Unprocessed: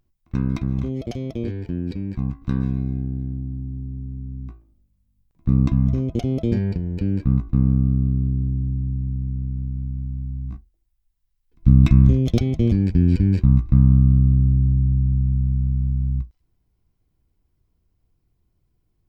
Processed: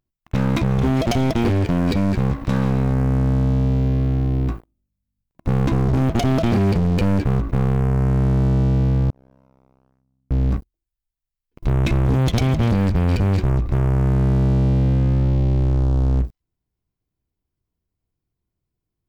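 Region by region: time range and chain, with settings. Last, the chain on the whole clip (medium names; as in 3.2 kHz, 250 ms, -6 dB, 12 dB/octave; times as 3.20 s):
9.10–10.31 s: vowel filter a + decimation joined by straight lines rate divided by 8×
whole clip: compression 3:1, threshold -24 dBFS; bass shelf 70 Hz -8.5 dB; waveshaping leveller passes 5; trim +1.5 dB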